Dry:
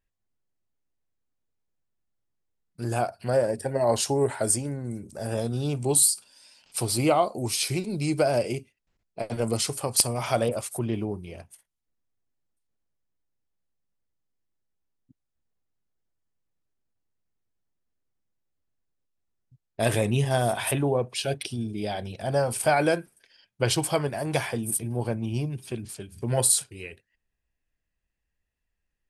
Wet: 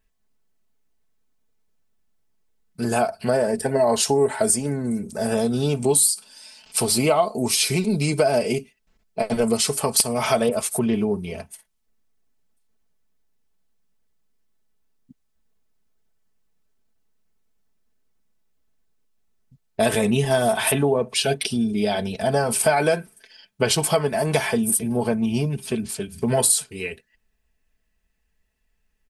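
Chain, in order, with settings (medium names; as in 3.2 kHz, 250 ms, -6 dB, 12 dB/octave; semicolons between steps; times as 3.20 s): comb 4.6 ms, depth 67%; compression 2.5:1, threshold -26 dBFS, peak gain reduction 8.5 dB; trim +8 dB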